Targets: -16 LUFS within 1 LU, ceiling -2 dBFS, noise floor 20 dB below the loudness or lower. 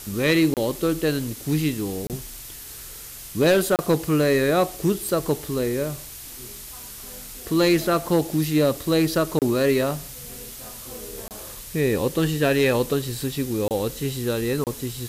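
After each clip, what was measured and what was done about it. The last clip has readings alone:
dropouts 7; longest dropout 28 ms; noise floor -39 dBFS; noise floor target -43 dBFS; loudness -22.5 LUFS; peak level -11.0 dBFS; loudness target -16.0 LUFS
-> interpolate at 0.54/2.07/3.76/9.39/11.28/13.68/14.64 s, 28 ms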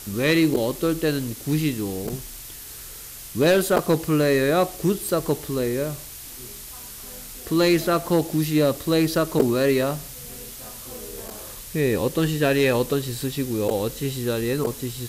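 dropouts 0; noise floor -39 dBFS; noise floor target -43 dBFS
-> noise reduction 6 dB, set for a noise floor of -39 dBFS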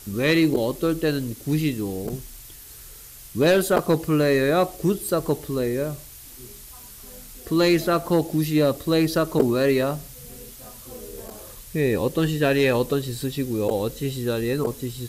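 noise floor -43 dBFS; loudness -22.5 LUFS; peak level -5.0 dBFS; loudness target -16.0 LUFS
-> trim +6.5 dB; peak limiter -2 dBFS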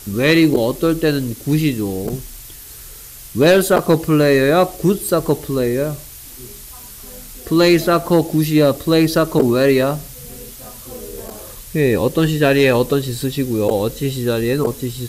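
loudness -16.0 LUFS; peak level -2.0 dBFS; noise floor -37 dBFS

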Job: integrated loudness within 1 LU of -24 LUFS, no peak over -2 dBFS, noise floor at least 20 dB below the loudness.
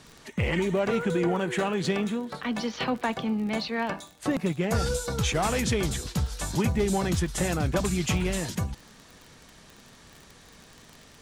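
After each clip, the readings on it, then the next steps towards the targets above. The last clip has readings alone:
tick rate 38 per s; loudness -28.0 LUFS; peak level -13.5 dBFS; loudness target -24.0 LUFS
-> de-click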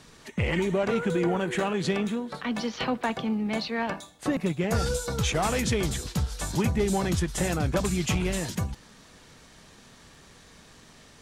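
tick rate 0.089 per s; loudness -28.0 LUFS; peak level -13.5 dBFS; loudness target -24.0 LUFS
-> trim +4 dB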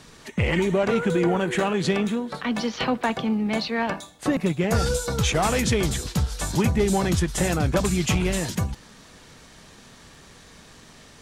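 loudness -24.0 LUFS; peak level -9.5 dBFS; noise floor -49 dBFS

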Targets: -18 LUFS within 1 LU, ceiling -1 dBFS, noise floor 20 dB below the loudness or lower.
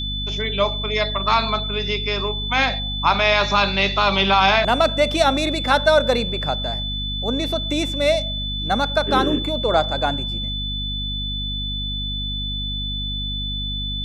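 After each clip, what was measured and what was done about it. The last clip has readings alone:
hum 50 Hz; highest harmonic 250 Hz; hum level -26 dBFS; steady tone 3.5 kHz; tone level -26 dBFS; loudness -20.0 LUFS; peak level -3.5 dBFS; loudness target -18.0 LUFS
-> hum notches 50/100/150/200/250 Hz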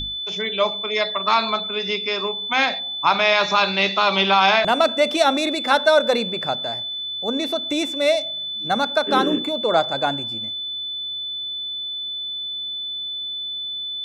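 hum not found; steady tone 3.5 kHz; tone level -26 dBFS
-> band-stop 3.5 kHz, Q 30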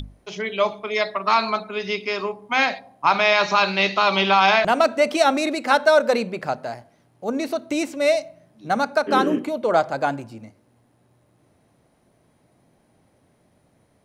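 steady tone not found; loudness -20.5 LUFS; peak level -4.0 dBFS; loudness target -18.0 LUFS
-> trim +2.5 dB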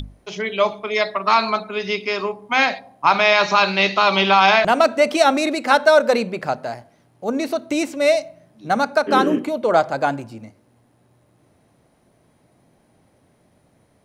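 loudness -18.0 LUFS; peak level -1.5 dBFS; noise floor -60 dBFS

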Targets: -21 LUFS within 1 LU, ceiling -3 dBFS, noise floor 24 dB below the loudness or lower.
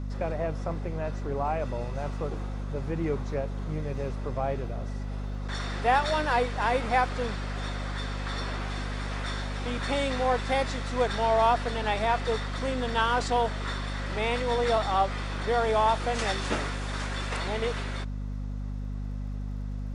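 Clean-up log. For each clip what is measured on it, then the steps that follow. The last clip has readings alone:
tick rate 39 per s; hum 50 Hz; highest harmonic 250 Hz; hum level -31 dBFS; loudness -29.5 LUFS; peak level -10.0 dBFS; loudness target -21.0 LUFS
-> de-click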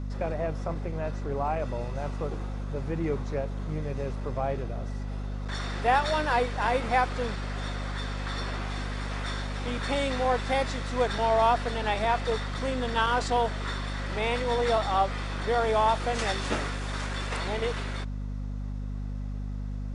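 tick rate 0 per s; hum 50 Hz; highest harmonic 250 Hz; hum level -31 dBFS
-> hum notches 50/100/150/200/250 Hz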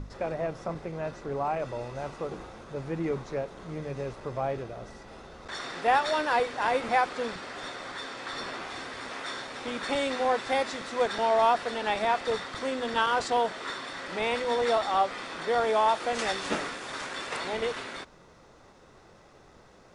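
hum not found; loudness -30.0 LUFS; peak level -11.0 dBFS; loudness target -21.0 LUFS
-> trim +9 dB; peak limiter -3 dBFS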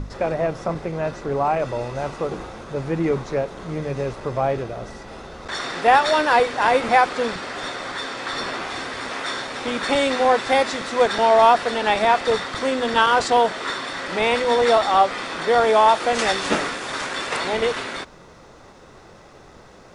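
loudness -21.0 LUFS; peak level -3.0 dBFS; noise floor -46 dBFS

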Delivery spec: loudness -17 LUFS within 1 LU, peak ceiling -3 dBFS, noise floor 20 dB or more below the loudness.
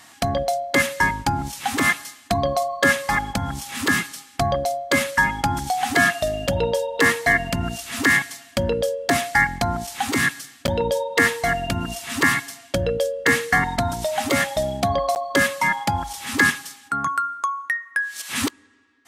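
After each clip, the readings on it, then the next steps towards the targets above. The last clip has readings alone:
dropouts 2; longest dropout 9.7 ms; loudness -22.0 LUFS; peak level -4.5 dBFS; loudness target -17.0 LUFS
-> interpolate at 10.67/15.15 s, 9.7 ms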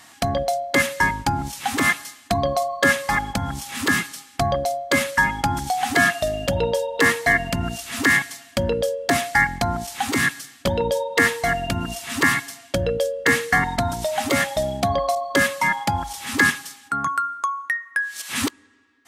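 dropouts 0; loudness -22.0 LUFS; peak level -4.5 dBFS; loudness target -17.0 LUFS
-> trim +5 dB; peak limiter -3 dBFS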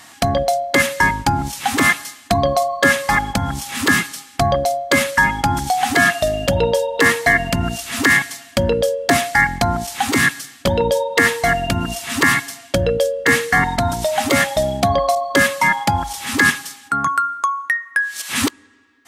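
loudness -17.5 LUFS; peak level -3.0 dBFS; noise floor -44 dBFS

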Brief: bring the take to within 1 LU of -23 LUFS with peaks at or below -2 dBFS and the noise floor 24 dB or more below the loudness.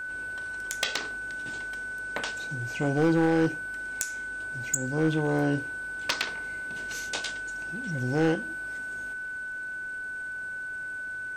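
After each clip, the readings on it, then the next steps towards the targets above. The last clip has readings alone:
clipped samples 0.4%; clipping level -17.0 dBFS; steady tone 1.5 kHz; tone level -33 dBFS; loudness -30.0 LUFS; peak level -17.0 dBFS; loudness target -23.0 LUFS
-> clip repair -17 dBFS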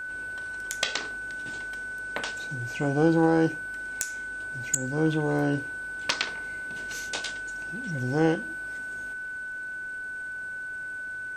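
clipped samples 0.0%; steady tone 1.5 kHz; tone level -33 dBFS
-> band-stop 1.5 kHz, Q 30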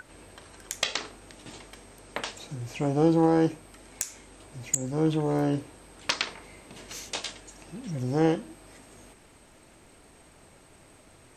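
steady tone not found; loudness -28.5 LUFS; peak level -8.0 dBFS; loudness target -23.0 LUFS
-> trim +5.5 dB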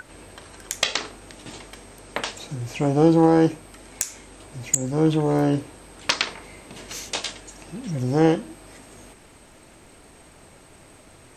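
loudness -23.0 LUFS; peak level -2.5 dBFS; noise floor -50 dBFS

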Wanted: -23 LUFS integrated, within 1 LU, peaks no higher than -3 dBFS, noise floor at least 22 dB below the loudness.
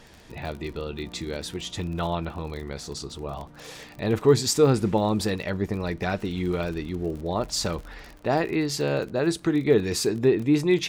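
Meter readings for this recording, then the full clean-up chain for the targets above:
tick rate 41 per s; loudness -26.0 LUFS; peak level -7.0 dBFS; loudness target -23.0 LUFS
-> de-click; trim +3 dB

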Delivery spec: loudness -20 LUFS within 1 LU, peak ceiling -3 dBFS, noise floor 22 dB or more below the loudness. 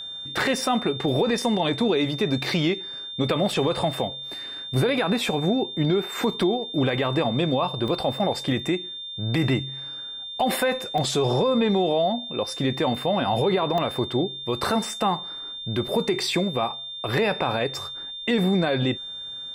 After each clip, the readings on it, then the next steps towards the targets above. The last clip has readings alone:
dropouts 5; longest dropout 1.3 ms; steady tone 3.6 kHz; tone level -33 dBFS; loudness -24.5 LUFS; peak level -11.5 dBFS; loudness target -20.0 LUFS
-> interpolate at 5.85/6.43/7.88/10.98/13.78 s, 1.3 ms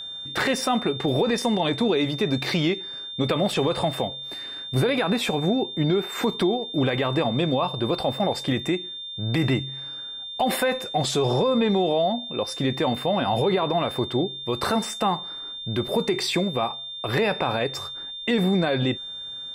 dropouts 0; steady tone 3.6 kHz; tone level -33 dBFS
-> band-stop 3.6 kHz, Q 30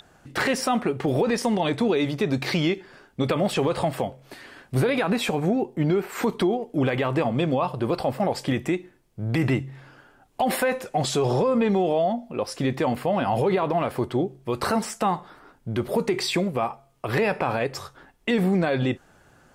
steady tone not found; loudness -25.0 LUFS; peak level -12.0 dBFS; loudness target -20.0 LUFS
-> trim +5 dB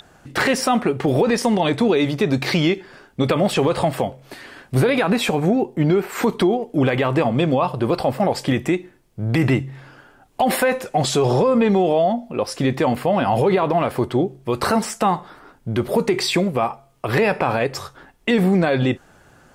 loudness -20.0 LUFS; peak level -7.0 dBFS; noise floor -53 dBFS

